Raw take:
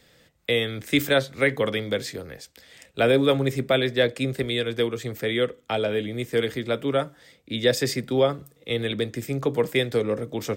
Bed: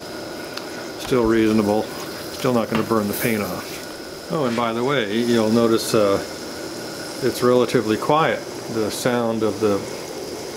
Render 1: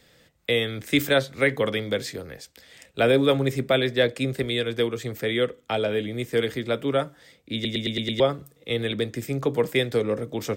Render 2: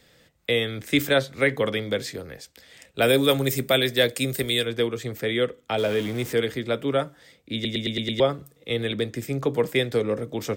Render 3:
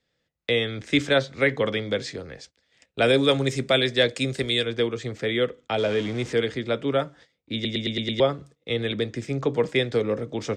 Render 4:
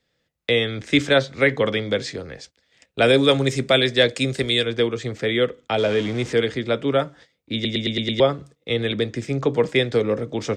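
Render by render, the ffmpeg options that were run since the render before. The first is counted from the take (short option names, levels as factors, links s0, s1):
-filter_complex "[0:a]asplit=7[s0][s1][s2][s3][s4][s5][s6];[s0]atrim=end=7.652[s7];[s1]atrim=start=7.538:end=7.652[s8];[s2]atrim=start=7.538:end=7.652[s9];[s3]atrim=start=7.538:end=7.652[s10];[s4]atrim=start=7.538:end=7.652[s11];[s5]atrim=start=7.538:end=7.652[s12];[s6]atrim=start=8.198[s13];[s7][s8]acrossfade=d=0.004:c1=hsin:c2=hsin[s14];[s14][s9]acrossfade=d=0.004:c1=hsin:c2=hsin[s15];[s15][s10]acrossfade=d=0.004:c1=hsin:c2=hsin[s16];[s16][s11]acrossfade=d=0.004:c1=hsin:c2=hsin[s17];[s17][s12]acrossfade=d=0.004:c1=hsin:c2=hsin[s18];[s18][s13]acrossfade=d=0.004:c1=hsin:c2=hsin"
-filter_complex "[0:a]asplit=3[s0][s1][s2];[s0]afade=t=out:st=3.01:d=0.02[s3];[s1]aemphasis=mode=production:type=75fm,afade=t=in:st=3.01:d=0.02,afade=t=out:st=4.64:d=0.02[s4];[s2]afade=t=in:st=4.64:d=0.02[s5];[s3][s4][s5]amix=inputs=3:normalize=0,asettb=1/sr,asplit=3[s6][s7][s8];[s6]atrim=end=5.784[s9];[s7]atrim=start=5.78:end=6.33,asetpts=PTS-STARTPTS,afade=t=in:d=0.004:c=qsin,afade=t=out:st=0.546:d=0.004:c=qsin,aeval=exprs='val(0)+0.5*0.0224*sgn(val(0))':c=same[s10];[s8]atrim=start=6.326[s11];[s9][s10]acrossfade=d=0.004:c1=hsin:c2=qsin[s12];[s12][s11]acrossfade=d=0.004:c1=qsin:c2=hsin"
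-af "lowpass=f=7000:w=0.5412,lowpass=f=7000:w=1.3066,agate=range=0.126:threshold=0.00447:ratio=16:detection=peak"
-af "volume=1.5"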